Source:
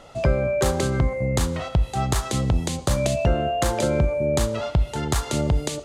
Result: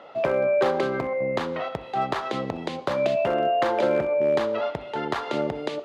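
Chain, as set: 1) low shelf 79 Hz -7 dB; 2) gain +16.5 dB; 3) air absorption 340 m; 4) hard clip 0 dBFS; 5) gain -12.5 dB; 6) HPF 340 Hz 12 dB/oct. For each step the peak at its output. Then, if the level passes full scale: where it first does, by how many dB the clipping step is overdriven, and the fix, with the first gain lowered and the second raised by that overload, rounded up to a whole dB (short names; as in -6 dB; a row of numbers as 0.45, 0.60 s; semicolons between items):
-6.5, +10.0, +8.5, 0.0, -12.5, -9.5 dBFS; step 2, 8.5 dB; step 2 +7.5 dB, step 5 -3.5 dB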